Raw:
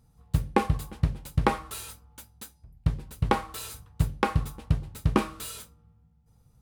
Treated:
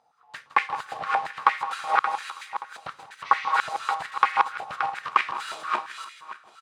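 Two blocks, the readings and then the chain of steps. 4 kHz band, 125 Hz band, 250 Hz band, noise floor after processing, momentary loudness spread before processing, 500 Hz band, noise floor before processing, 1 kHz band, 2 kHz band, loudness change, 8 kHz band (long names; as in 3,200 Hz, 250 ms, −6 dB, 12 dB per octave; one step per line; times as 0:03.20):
+4.5 dB, below −25 dB, below −15 dB, −58 dBFS, 16 LU, −6.0 dB, −63 dBFS, +9.5 dB, +10.5 dB, +3.0 dB, −5.5 dB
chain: feedback delay that plays each chunk backwards 288 ms, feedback 43%, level −1 dB
in parallel at −3 dB: brickwall limiter −14 dBFS, peak gain reduction 10.5 dB
on the sum: healed spectral selection 0:03.28–0:03.49, 1,900–6,400 Hz after
high-frequency loss of the air 110 metres
on a send: repeating echo 162 ms, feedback 36%, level −13.5 dB
on the sum: high-pass on a step sequencer 8.7 Hz 720–2,000 Hz
level −1.5 dB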